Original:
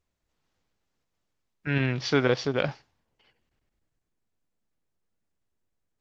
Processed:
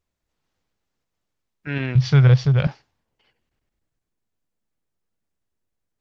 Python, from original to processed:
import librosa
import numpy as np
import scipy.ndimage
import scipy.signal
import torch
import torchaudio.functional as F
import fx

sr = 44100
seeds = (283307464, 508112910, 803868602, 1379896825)

y = fx.low_shelf_res(x, sr, hz=190.0, db=13.0, q=3.0, at=(1.95, 2.67))